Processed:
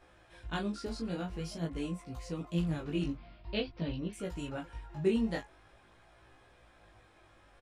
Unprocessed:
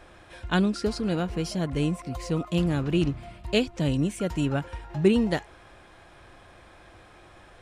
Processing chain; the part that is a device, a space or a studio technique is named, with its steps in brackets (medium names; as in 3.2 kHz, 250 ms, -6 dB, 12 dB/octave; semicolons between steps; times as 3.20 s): 3.15–4.13 s: steep low-pass 5.2 kHz 72 dB/octave; double-tracked vocal (doubling 18 ms -4 dB; chorus 0.47 Hz, delay 15.5 ms, depth 6.3 ms); trim -8.5 dB